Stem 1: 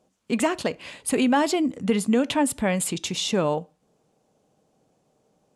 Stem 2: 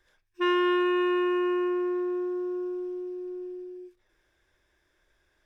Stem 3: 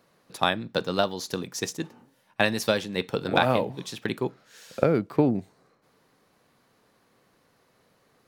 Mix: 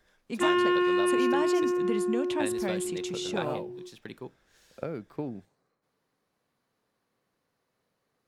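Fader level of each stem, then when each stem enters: −10.5, 0.0, −13.5 decibels; 0.00, 0.00, 0.00 seconds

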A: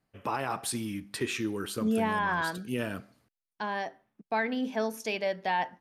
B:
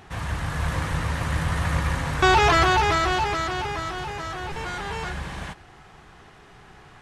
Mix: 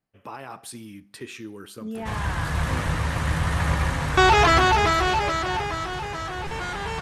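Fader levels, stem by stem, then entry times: −6.0, +1.0 decibels; 0.00, 1.95 seconds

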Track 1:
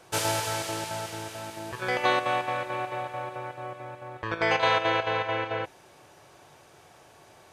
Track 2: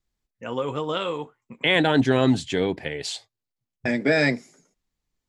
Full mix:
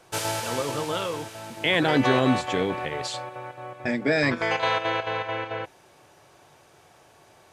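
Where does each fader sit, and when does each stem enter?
−1.0, −2.5 decibels; 0.00, 0.00 seconds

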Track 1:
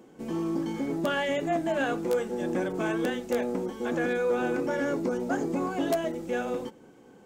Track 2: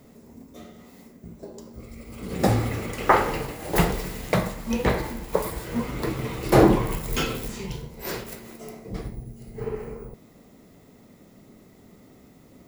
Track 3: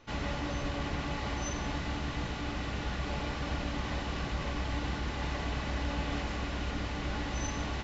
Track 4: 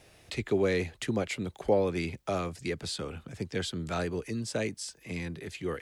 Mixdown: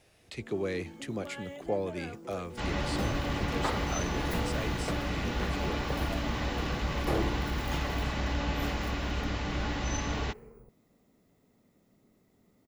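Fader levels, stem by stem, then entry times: −16.0, −15.5, +2.5, −6.0 decibels; 0.20, 0.55, 2.50, 0.00 seconds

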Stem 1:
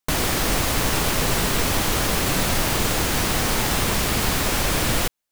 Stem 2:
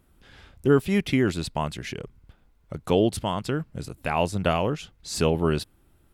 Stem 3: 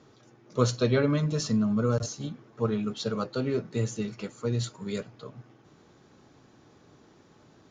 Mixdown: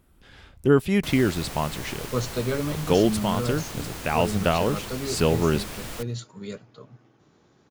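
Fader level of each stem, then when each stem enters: −15.0, +1.0, −3.0 decibels; 0.95, 0.00, 1.55 seconds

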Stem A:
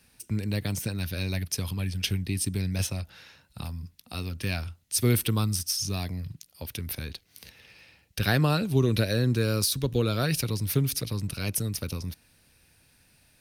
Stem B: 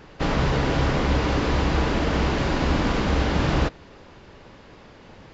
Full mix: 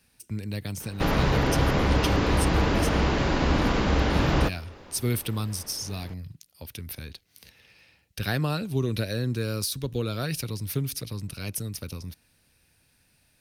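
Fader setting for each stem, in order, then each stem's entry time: −3.5, −1.0 decibels; 0.00, 0.80 seconds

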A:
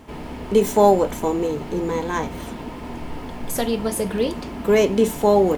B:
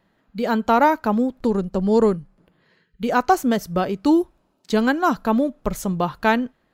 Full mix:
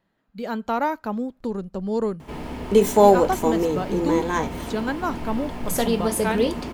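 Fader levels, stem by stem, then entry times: +0.5, −7.5 decibels; 2.20, 0.00 seconds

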